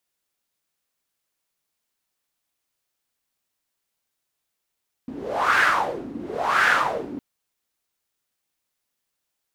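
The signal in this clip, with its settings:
wind from filtered noise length 2.11 s, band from 260 Hz, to 1,600 Hz, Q 4.7, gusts 2, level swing 17 dB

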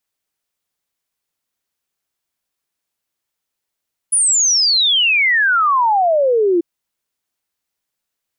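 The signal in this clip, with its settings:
exponential sine sweep 10,000 Hz → 330 Hz 2.49 s −11 dBFS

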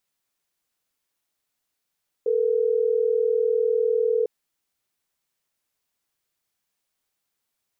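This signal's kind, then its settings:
call progress tone ringback tone, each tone −21.5 dBFS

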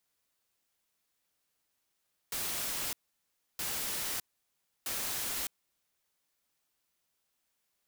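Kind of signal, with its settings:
noise bursts white, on 0.61 s, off 0.66 s, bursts 3, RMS −35.5 dBFS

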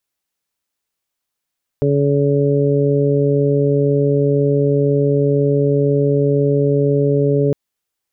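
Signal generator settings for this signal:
steady harmonic partials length 5.71 s, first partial 142 Hz, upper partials −4/0.5/−6.5 dB, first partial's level −16 dB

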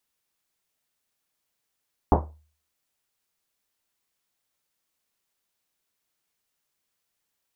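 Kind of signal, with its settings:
drum after Risset, pitch 76 Hz, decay 0.46 s, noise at 560 Hz, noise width 880 Hz, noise 55%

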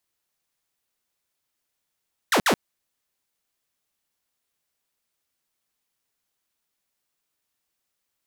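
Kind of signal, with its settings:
repeated falling chirps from 2,100 Hz, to 160 Hz, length 0.08 s saw, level −14 dB, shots 2, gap 0.06 s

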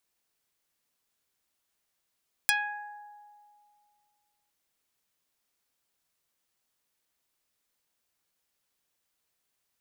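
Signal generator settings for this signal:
Karplus-Strong string G#5, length 2.01 s, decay 2.30 s, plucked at 0.18, dark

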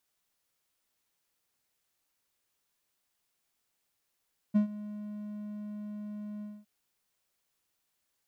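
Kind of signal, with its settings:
note with an ADSR envelope triangle 209 Hz, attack 21 ms, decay 109 ms, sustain −18 dB, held 1.88 s, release 232 ms −17.5 dBFS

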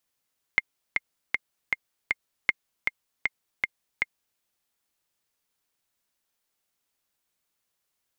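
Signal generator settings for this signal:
click track 157 BPM, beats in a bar 5, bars 2, 2,120 Hz, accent 4 dB −6.5 dBFS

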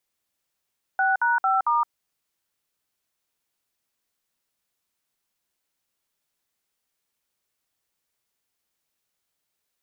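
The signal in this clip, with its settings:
touch tones "6#5*", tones 168 ms, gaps 57 ms, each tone −21 dBFS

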